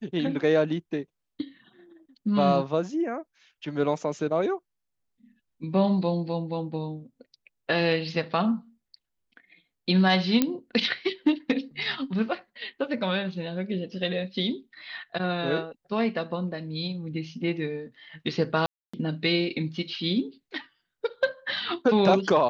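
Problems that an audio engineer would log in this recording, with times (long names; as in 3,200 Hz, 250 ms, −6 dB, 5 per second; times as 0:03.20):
0:10.42: click −8 dBFS
0:18.66–0:18.93: drop-out 275 ms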